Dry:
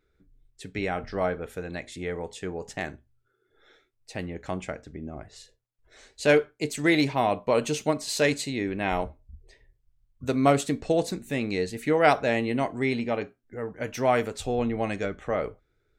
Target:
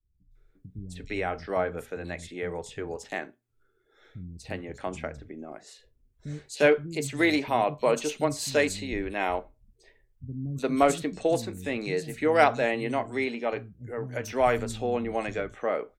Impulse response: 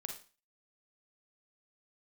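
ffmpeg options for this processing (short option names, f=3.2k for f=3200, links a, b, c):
-filter_complex "[0:a]adynamicequalizer=threshold=0.0126:dfrequency=170:dqfactor=0.96:tfrequency=170:tqfactor=0.96:attack=5:release=100:ratio=0.375:range=2.5:mode=cutabove:tftype=bell,acrossover=split=200|4200[a][b][c];[c]adelay=310[d];[b]adelay=350[e];[a][e][d]amix=inputs=3:normalize=0"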